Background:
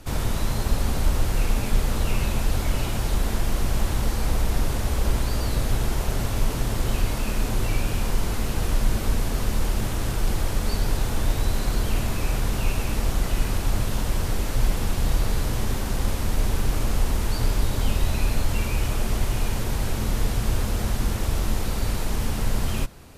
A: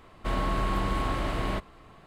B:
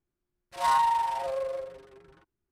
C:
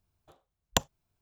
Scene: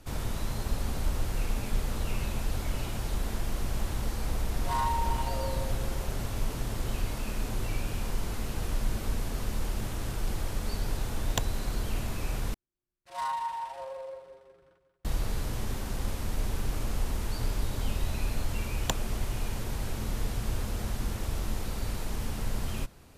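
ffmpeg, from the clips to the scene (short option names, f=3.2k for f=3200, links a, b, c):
-filter_complex "[2:a]asplit=2[a][b];[3:a]asplit=2[c][d];[0:a]volume=-8dB[e];[a]asplit=2[f][g];[g]adelay=390,highpass=300,lowpass=3.4k,asoftclip=type=hard:threshold=-24.5dB,volume=-8dB[h];[f][h]amix=inputs=2:normalize=0[i];[b]aecho=1:1:184|368|552|736|920:0.316|0.139|0.0612|0.0269|0.0119[j];[d]dynaudnorm=f=130:g=3:m=15dB[k];[e]asplit=2[l][m];[l]atrim=end=12.544[n];[j]atrim=end=2.51,asetpts=PTS-STARTPTS,volume=-9dB[o];[m]atrim=start=15.046[p];[i]atrim=end=2.51,asetpts=PTS-STARTPTS,volume=-7dB,afade=t=in:d=0.004:c=hsin,afade=t=out:st=2.506:d=0.004:c=hsin,adelay=4070[q];[c]atrim=end=1.21,asetpts=PTS-STARTPTS,volume=-5.5dB,afade=t=in:d=0.004:c=hsin,afade=t=out:st=1.206:d=0.004:c=hsin,adelay=10610[r];[k]atrim=end=1.21,asetpts=PTS-STARTPTS,volume=-10dB,afade=t=in:d=0.004:c=hsin,afade=t=out:st=1.206:d=0.004:c=hsin,adelay=18130[s];[n][o]acrossfade=d=0.004:c1=hsin:c2=hsin[t];[t][p]acrossfade=d=0.004:c1=hsin:c2=hsin[u];[u][q][r][s]amix=inputs=4:normalize=0"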